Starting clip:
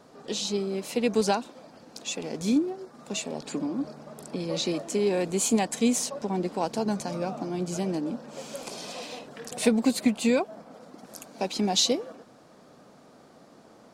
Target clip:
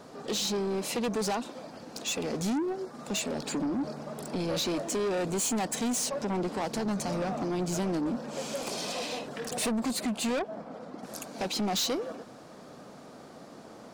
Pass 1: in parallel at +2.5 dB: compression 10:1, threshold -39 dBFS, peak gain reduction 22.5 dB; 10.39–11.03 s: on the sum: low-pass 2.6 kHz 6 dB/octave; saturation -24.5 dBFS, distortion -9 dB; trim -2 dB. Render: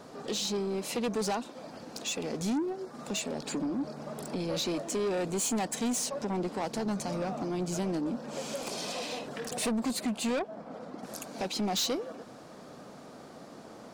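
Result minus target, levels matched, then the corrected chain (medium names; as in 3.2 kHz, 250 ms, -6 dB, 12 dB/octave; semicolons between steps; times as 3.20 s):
compression: peak gain reduction +11 dB
in parallel at +2.5 dB: compression 10:1, threshold -27 dBFS, peak gain reduction 12 dB; 10.39–11.03 s: on the sum: low-pass 2.6 kHz 6 dB/octave; saturation -24.5 dBFS, distortion -7 dB; trim -2 dB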